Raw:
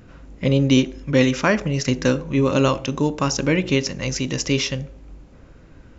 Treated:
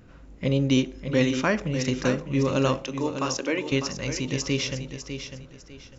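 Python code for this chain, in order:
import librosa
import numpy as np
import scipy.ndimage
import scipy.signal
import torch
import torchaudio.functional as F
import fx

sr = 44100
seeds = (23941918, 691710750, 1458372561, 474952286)

p1 = fx.highpass(x, sr, hz=290.0, slope=24, at=(2.82, 3.72))
p2 = p1 + fx.echo_feedback(p1, sr, ms=601, feedback_pct=28, wet_db=-9.0, dry=0)
y = p2 * 10.0 ** (-5.5 / 20.0)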